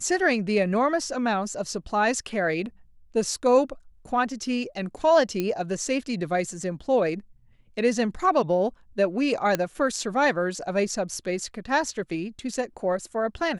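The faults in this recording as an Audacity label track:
5.400000	5.400000	click −13 dBFS
9.550000	9.550000	click −9 dBFS

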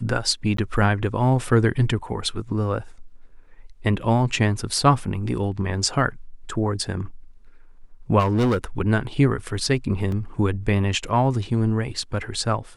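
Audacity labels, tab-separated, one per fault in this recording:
0.570000	0.580000	drop-out 13 ms
8.190000	8.640000	clipping −16.5 dBFS
10.120000	10.120000	drop-out 2.7 ms

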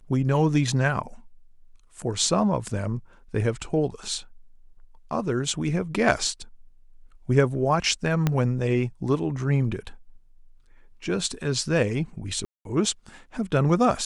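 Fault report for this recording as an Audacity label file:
8.270000	8.270000	click −9 dBFS
12.450000	12.650000	drop-out 202 ms

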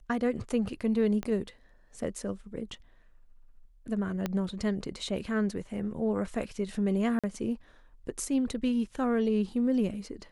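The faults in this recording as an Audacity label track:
1.230000	1.230000	click −21 dBFS
4.260000	4.260000	click −16 dBFS
7.190000	7.240000	drop-out 46 ms

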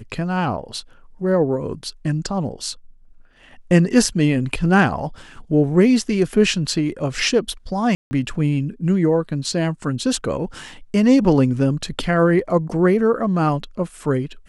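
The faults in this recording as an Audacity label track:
7.950000	8.110000	drop-out 160 ms

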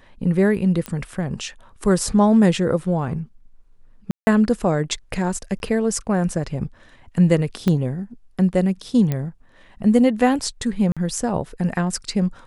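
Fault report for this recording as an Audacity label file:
0.860000	0.860000	click −13 dBFS
4.110000	4.270000	drop-out 160 ms
5.590000	5.600000	drop-out 11 ms
7.680000	7.680000	click −9 dBFS
9.120000	9.120000	click −11 dBFS
10.920000	10.970000	drop-out 46 ms

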